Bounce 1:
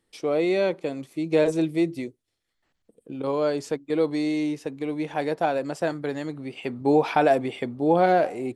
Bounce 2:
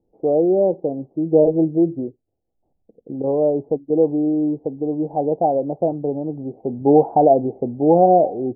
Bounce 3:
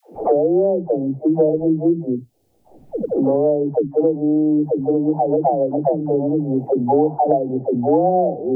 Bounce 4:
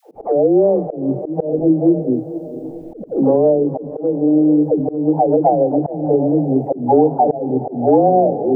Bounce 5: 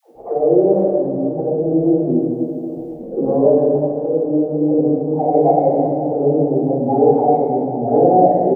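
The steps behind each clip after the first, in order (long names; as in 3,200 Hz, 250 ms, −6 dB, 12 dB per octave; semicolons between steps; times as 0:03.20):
Chebyshev low-pass filter 800 Hz, order 5; level +7 dB
all-pass dispersion lows, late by 145 ms, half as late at 390 Hz; multiband upward and downward compressor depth 100%
feedback delay with all-pass diffusion 483 ms, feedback 52%, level −13.5 dB; volume swells 190 ms; level +3.5 dB
far-end echo of a speakerphone 130 ms, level −28 dB; dense smooth reverb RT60 2.2 s, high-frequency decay 0.75×, DRR −7 dB; level −8 dB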